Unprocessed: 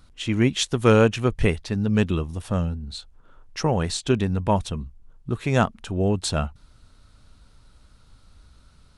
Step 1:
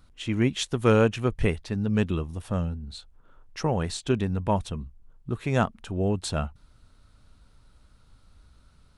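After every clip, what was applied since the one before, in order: peaking EQ 5.5 kHz -3 dB 1.7 oct; trim -3.5 dB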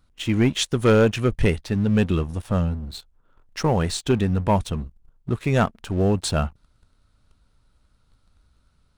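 waveshaping leveller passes 2; trim -1.5 dB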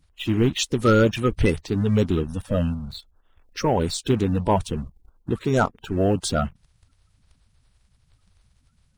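coarse spectral quantiser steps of 30 dB

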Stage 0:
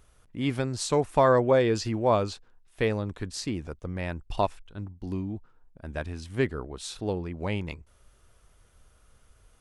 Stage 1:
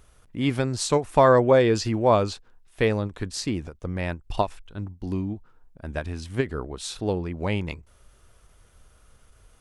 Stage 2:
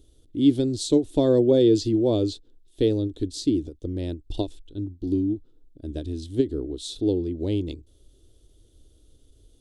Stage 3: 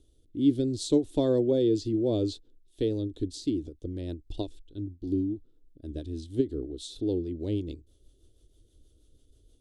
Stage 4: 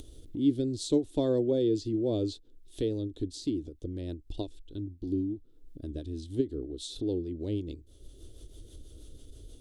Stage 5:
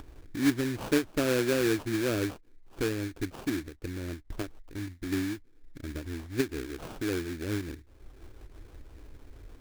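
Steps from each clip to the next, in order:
endings held to a fixed fall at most 260 dB/s; trim +4 dB
FFT filter 100 Hz 0 dB, 200 Hz -7 dB, 300 Hz +11 dB, 1.1 kHz -24 dB, 2.4 kHz -18 dB, 3.5 kHz +3 dB, 5.4 kHz -5 dB, 7.7 kHz -3 dB, 12 kHz -6 dB
rotary cabinet horn 0.7 Hz, later 6.3 Hz, at 2.22 s; trim -3.5 dB
upward compressor, threshold -30 dBFS; trim -2.5 dB
sample-rate reducer 2 kHz, jitter 20%

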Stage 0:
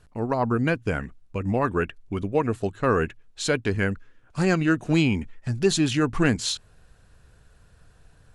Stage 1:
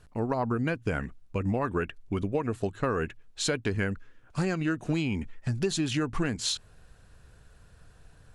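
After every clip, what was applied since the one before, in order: compression 10:1, threshold -24 dBFS, peak gain reduction 10 dB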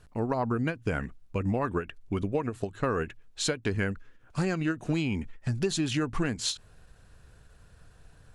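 endings held to a fixed fall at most 260 dB/s

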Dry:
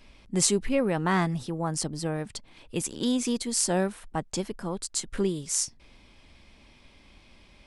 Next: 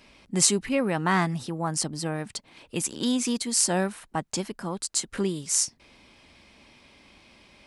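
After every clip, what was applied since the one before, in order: high-pass 170 Hz 6 dB/octave; band-stop 3.4 kHz, Q 26; dynamic bell 460 Hz, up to -5 dB, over -43 dBFS, Q 1.5; trim +3.5 dB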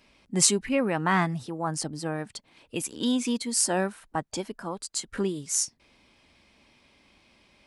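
spectral noise reduction 6 dB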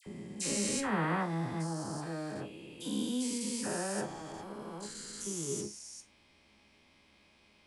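spectrogram pixelated in time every 400 ms; chord resonator C#2 minor, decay 0.21 s; phase dispersion lows, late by 66 ms, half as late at 1.5 kHz; trim +6.5 dB

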